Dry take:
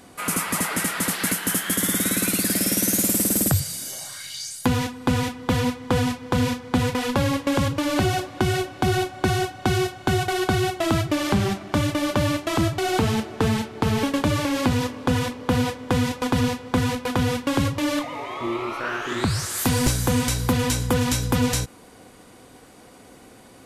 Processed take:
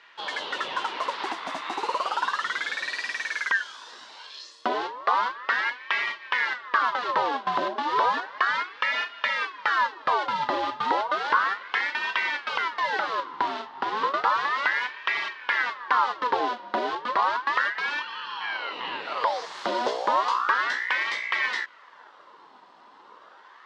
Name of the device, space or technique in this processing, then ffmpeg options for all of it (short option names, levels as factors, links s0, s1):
voice changer toy: -filter_complex "[0:a]asettb=1/sr,asplit=3[s0][s1][s2];[s0]atrim=end=12.494[s3];[s1]atrim=start=12.49:end=14.05,asetpts=PTS-STARTPTS,afade=t=in:d=0.004:c=qsin,afade=t=out:st=1.556:d=0.004:c=qsin,highpass=240[s4];[s2]atrim=start=14.046[s5];[s3][s4]acrossfade=d=0.004:c1=hsin:c2=qsin[s6];[s6][s5]acrossfade=d=0.004:c1=qsin:c2=hsin,aeval=exprs='val(0)*sin(2*PI*1300*n/s+1300*0.65/0.33*sin(2*PI*0.33*n/s))':c=same,highpass=440,equalizer=f=690:t=q:w=4:g=-5,equalizer=f=1000:t=q:w=4:g=7,equalizer=f=2400:t=q:w=4:g=-8,lowpass=f=4200:w=0.5412,lowpass=f=4200:w=1.3066"